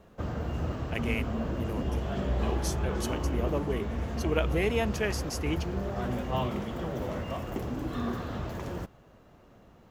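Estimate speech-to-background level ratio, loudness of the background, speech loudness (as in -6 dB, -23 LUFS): -0.5 dB, -33.5 LUFS, -34.0 LUFS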